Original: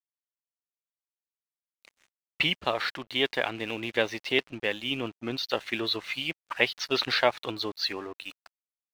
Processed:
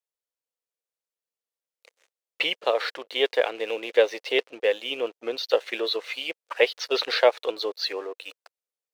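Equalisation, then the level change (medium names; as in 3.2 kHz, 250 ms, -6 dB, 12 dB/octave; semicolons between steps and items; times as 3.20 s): resonant high-pass 480 Hz, resonance Q 4.9; peaking EQ 5.9 kHz +3 dB 2.7 oct; -2.0 dB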